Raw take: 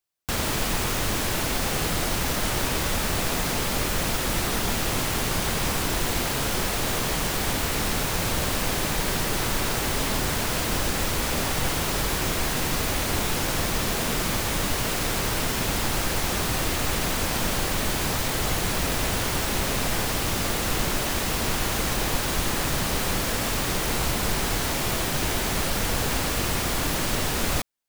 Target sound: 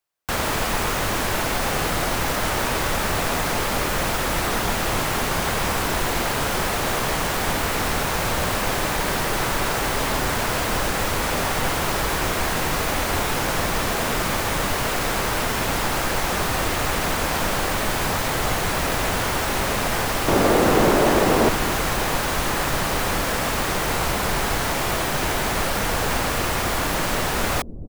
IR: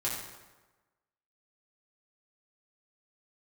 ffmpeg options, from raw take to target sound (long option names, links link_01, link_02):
-filter_complex "[0:a]asettb=1/sr,asplit=3[link_01][link_02][link_03];[link_01]atrim=end=20.284[link_04];[link_02]atrim=start=20.28:end=21.49,asetpts=PTS-STARTPTS,afade=type=in:duration=0.004:curve=qsin,afade=type=out:start_time=1.206:duration=0.004:curve=qsin,equalizer=frequency=360:width=0.54:gain=12.5[link_05];[link_03]atrim=start=21.486[link_06];[link_04][link_05]acrossfade=duration=0.004:curve1=hsin:curve2=qsin[link_07];[link_07][link_06]acrossfade=duration=0.004:curve1=qsin:curve2=hsin,acrossover=split=460|2100[link_08][link_09][link_10];[link_08]aecho=1:1:258:0.447[link_11];[link_09]acontrast=73[link_12];[link_11][link_12][link_10]amix=inputs=3:normalize=0"